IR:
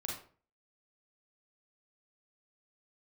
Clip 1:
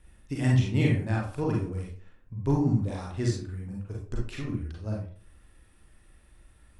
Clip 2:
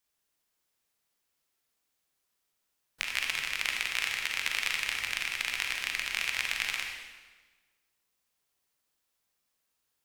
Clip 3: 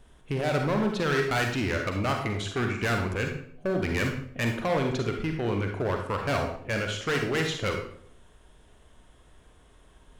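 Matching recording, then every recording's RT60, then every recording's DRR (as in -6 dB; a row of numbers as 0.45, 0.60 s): 1; 0.45, 1.3, 0.60 s; -2.5, 1.5, 2.5 dB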